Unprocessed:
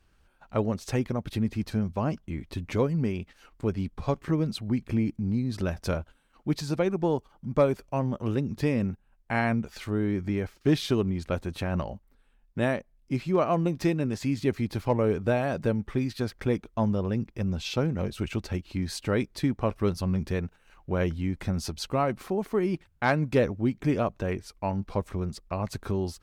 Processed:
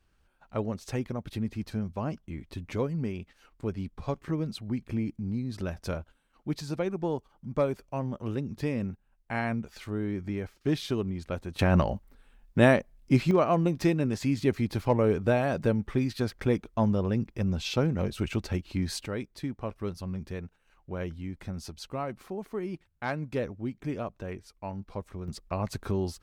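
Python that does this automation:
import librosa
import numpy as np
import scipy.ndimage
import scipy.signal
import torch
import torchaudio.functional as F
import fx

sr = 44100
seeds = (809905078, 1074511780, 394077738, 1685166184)

y = fx.gain(x, sr, db=fx.steps((0.0, -4.5), (11.59, 6.5), (13.31, 0.5), (19.06, -8.0), (25.28, -0.5)))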